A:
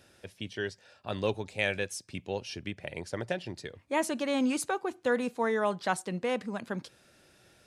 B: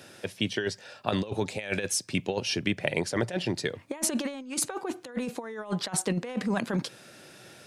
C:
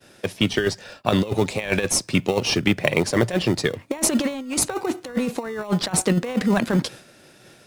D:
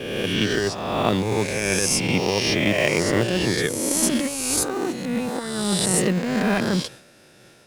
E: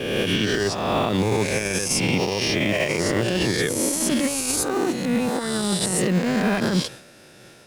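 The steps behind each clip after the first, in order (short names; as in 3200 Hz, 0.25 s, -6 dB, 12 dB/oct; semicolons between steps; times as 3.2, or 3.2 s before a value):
HPF 110 Hz 24 dB/oct; negative-ratio compressor -35 dBFS, ratio -0.5; gain +6.5 dB
expander -43 dBFS; in parallel at -11 dB: sample-and-hold 27×; on the sum: gain +7 dB
spectral swells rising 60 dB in 1.50 s; gain -4.5 dB
limiter -15.5 dBFS, peak gain reduction 11 dB; gain +3.5 dB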